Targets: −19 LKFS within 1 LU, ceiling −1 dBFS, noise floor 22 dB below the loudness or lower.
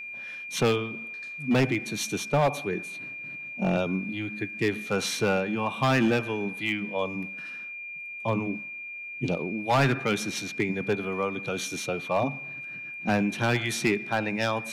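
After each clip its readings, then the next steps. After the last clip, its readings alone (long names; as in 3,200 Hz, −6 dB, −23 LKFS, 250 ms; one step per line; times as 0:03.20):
share of clipped samples 1.0%; peaks flattened at −17.5 dBFS; interfering tone 2,400 Hz; level of the tone −36 dBFS; integrated loudness −28.0 LKFS; sample peak −17.5 dBFS; target loudness −19.0 LKFS
→ clipped peaks rebuilt −17.5 dBFS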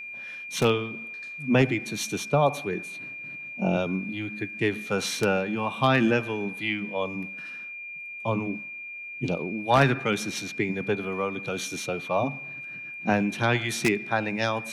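share of clipped samples 0.0%; interfering tone 2,400 Hz; level of the tone −36 dBFS
→ notch filter 2,400 Hz, Q 30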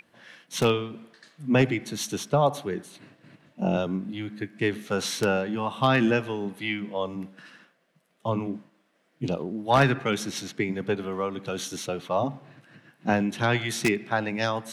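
interfering tone none found; integrated loudness −27.0 LKFS; sample peak −8.0 dBFS; target loudness −19.0 LKFS
→ level +8 dB
brickwall limiter −1 dBFS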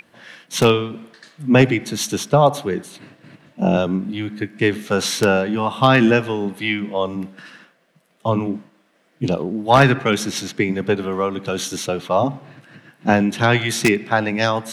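integrated loudness −19.0 LKFS; sample peak −1.0 dBFS; background noise floor −60 dBFS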